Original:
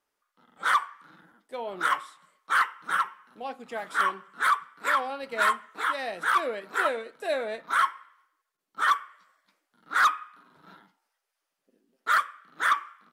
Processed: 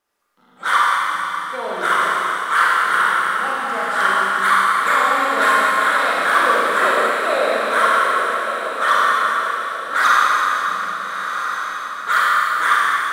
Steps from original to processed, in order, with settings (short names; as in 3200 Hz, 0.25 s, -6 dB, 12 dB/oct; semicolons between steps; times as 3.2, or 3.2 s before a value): diffused feedback echo 1.336 s, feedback 40%, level -8 dB; Schroeder reverb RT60 3.5 s, combs from 32 ms, DRR -6.5 dB; gain +4 dB